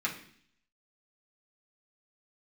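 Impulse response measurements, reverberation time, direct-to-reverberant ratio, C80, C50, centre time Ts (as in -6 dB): 0.55 s, -5.0 dB, 13.0 dB, 9.0 dB, 18 ms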